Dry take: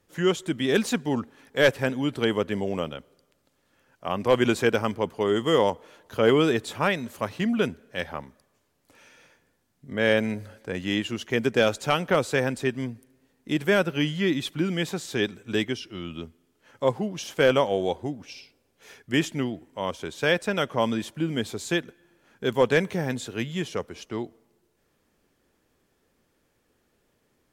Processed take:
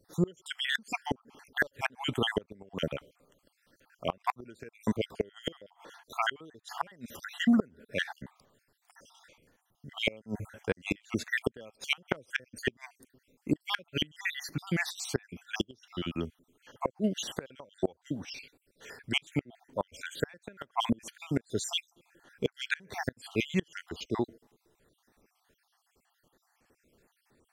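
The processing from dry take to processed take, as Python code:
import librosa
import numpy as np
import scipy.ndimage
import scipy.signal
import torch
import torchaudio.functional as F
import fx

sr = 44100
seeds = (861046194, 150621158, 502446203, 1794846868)

y = fx.spec_dropout(x, sr, seeds[0], share_pct=55)
y = fx.gate_flip(y, sr, shuts_db=-18.0, range_db=-30)
y = y * librosa.db_to_amplitude(3.0)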